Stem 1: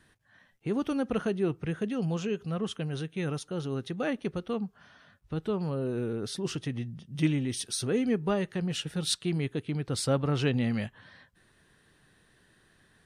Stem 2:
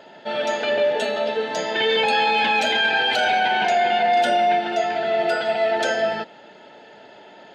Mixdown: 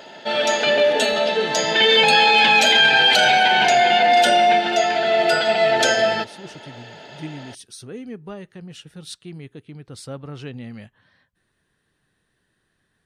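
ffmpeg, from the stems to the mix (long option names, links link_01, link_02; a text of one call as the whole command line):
ffmpeg -i stem1.wav -i stem2.wav -filter_complex "[0:a]volume=-7dB[link_01];[1:a]highshelf=frequency=3200:gain=11,volume=2.5dB[link_02];[link_01][link_02]amix=inputs=2:normalize=0" out.wav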